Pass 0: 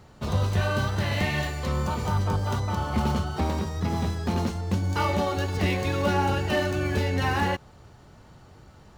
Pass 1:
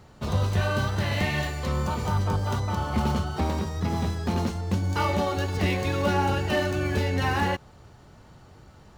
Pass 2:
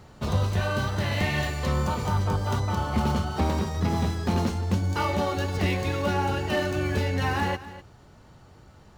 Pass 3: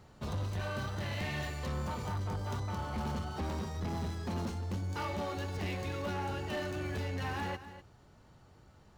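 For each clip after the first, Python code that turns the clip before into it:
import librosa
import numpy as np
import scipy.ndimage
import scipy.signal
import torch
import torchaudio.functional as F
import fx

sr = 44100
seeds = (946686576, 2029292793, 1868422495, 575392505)

y1 = x
y2 = fx.rider(y1, sr, range_db=10, speed_s=0.5)
y2 = y2 + 10.0 ** (-15.5 / 20.0) * np.pad(y2, (int(250 * sr / 1000.0), 0))[:len(y2)]
y3 = 10.0 ** (-22.5 / 20.0) * np.tanh(y2 / 10.0 ** (-22.5 / 20.0))
y3 = F.gain(torch.from_numpy(y3), -8.0).numpy()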